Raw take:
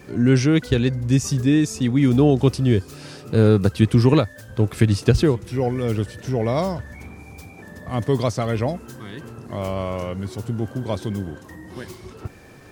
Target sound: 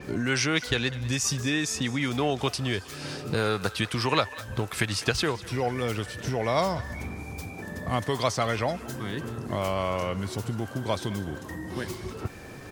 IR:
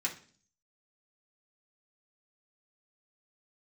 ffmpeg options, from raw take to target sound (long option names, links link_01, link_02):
-filter_complex "[0:a]acrossover=split=720[link_01][link_02];[link_01]acompressor=threshold=-30dB:ratio=16[link_03];[link_02]aecho=1:1:200|400|600:0.141|0.0494|0.0173[link_04];[link_03][link_04]amix=inputs=2:normalize=0,adynamicequalizer=threshold=0.00398:dfrequency=7200:dqfactor=0.7:tfrequency=7200:tqfactor=0.7:attack=5:release=100:ratio=0.375:range=2.5:mode=cutabove:tftype=highshelf,volume=3dB"